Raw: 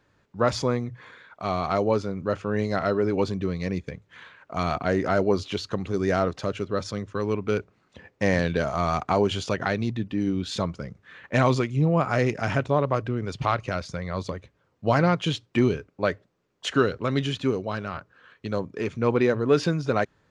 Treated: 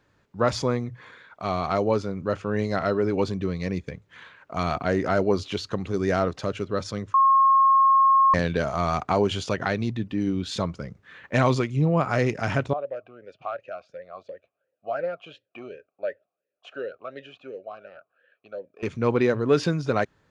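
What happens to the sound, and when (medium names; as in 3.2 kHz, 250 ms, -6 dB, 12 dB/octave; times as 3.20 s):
7.14–8.34 s: bleep 1.08 kHz -14 dBFS
12.73–18.83 s: talking filter a-e 2.8 Hz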